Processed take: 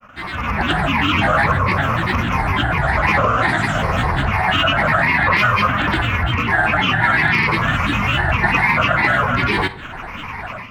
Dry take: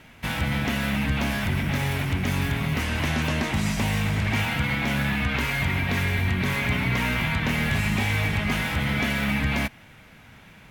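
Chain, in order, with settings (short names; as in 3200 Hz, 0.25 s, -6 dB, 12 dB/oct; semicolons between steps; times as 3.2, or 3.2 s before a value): moving spectral ripple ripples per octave 0.85, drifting -0.53 Hz, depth 14 dB; high shelf 5600 Hz -11.5 dB; compressor 3:1, threshold -34 dBFS, peak gain reduction 13.5 dB; band shelf 1200 Hz +11 dB; grains, pitch spread up and down by 7 st; AGC gain up to 14.5 dB; on a send: reverb RT60 0.80 s, pre-delay 3 ms, DRR 13 dB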